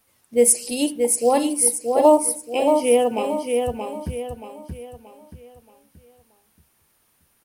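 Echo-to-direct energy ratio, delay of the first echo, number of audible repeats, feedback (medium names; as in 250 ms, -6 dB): -4.5 dB, 628 ms, 4, 39%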